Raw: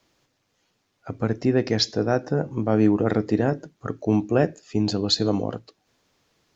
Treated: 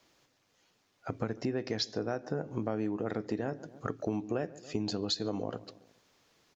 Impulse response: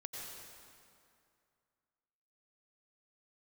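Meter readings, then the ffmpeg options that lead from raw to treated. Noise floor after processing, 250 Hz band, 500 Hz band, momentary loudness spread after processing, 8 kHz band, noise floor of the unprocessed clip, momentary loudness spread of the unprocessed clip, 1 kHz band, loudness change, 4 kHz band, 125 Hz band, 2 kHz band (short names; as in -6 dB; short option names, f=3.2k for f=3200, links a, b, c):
-73 dBFS, -12.5 dB, -11.5 dB, 8 LU, n/a, -72 dBFS, 10 LU, -10.0 dB, -12.0 dB, -10.5 dB, -13.5 dB, -10.5 dB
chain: -filter_complex "[0:a]lowshelf=f=210:g=-6,asplit=2[a][b];[b]adelay=140,lowpass=f=1.4k:p=1,volume=-23dB,asplit=2[c][d];[d]adelay=140,lowpass=f=1.4k:p=1,volume=0.49,asplit=2[e][f];[f]adelay=140,lowpass=f=1.4k:p=1,volume=0.49[g];[c][e][g]amix=inputs=3:normalize=0[h];[a][h]amix=inputs=2:normalize=0,acompressor=threshold=-30dB:ratio=6"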